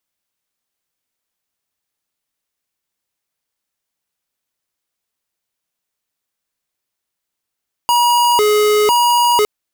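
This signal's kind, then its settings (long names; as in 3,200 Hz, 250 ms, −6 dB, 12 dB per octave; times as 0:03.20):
siren hi-lo 421–959 Hz 1 per second square −12.5 dBFS 1.56 s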